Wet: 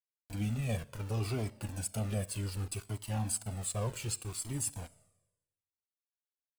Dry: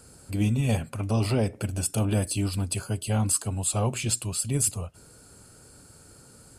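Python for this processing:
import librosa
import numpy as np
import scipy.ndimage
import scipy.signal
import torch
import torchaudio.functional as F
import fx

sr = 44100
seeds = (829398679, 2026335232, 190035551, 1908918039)

y = np.where(np.abs(x) >= 10.0 ** (-33.0 / 20.0), x, 0.0)
y = fx.rev_schroeder(y, sr, rt60_s=1.0, comb_ms=28, drr_db=19.0)
y = fx.comb_cascade(y, sr, direction='falling', hz=0.67)
y = y * librosa.db_to_amplitude(-5.5)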